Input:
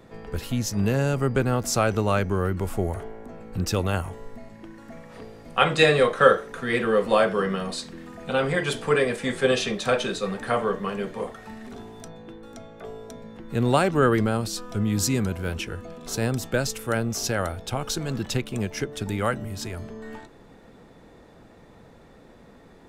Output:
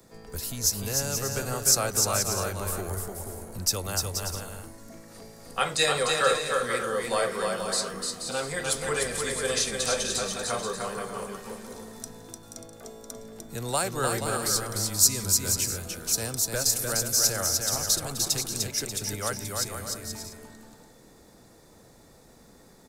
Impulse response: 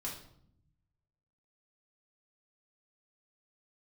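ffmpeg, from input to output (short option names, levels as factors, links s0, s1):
-filter_complex "[0:a]acrossover=split=110|430|2600[s0][s1][s2][s3];[s1]acompressor=threshold=0.0178:ratio=6[s4];[s0][s4][s2][s3]amix=inputs=4:normalize=0,asettb=1/sr,asplit=3[s5][s6][s7];[s5]atrim=end=8.524[s8];[s6]atrim=start=8.52:end=10.25,asetpts=PTS-STARTPTS,afade=t=in:d=0.004:c=qsin,afade=t=out:st=1.726:d=0.004:c=qsin,aeval=exprs='val(0)+0.00631*(sin(2*PI*50*n/s)+sin(2*PI*2*50*n/s)/2+sin(2*PI*3*50*n/s)/3+sin(2*PI*4*50*n/s)/4+sin(2*PI*5*50*n/s)/5)':c=same[s9];[s7]atrim=start=10.246[s10];[s8][s9]acrossfade=d=0.004:c1=hsin:c2=qsin[s11];[s11][s10]acrossfade=d=0.004:c1=qsin:c2=hsin,aecho=1:1:300|480|588|652.8|691.7:0.631|0.398|0.251|0.158|0.1,aexciter=amount=5.1:drive=5.7:freq=4300,volume=0.473"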